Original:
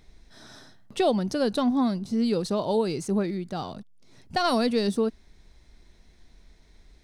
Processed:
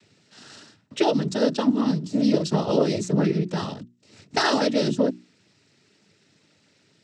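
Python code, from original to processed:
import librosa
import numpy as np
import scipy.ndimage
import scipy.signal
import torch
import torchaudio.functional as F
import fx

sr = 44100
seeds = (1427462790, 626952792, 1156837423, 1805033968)

y = fx.peak_eq(x, sr, hz=830.0, db=-10.0, octaves=0.47)
y = fx.noise_vocoder(y, sr, seeds[0], bands=12)
y = fx.rider(y, sr, range_db=10, speed_s=0.5)
y = fx.hum_notches(y, sr, base_hz=60, count=6)
y = F.gain(torch.from_numpy(y), 5.0).numpy()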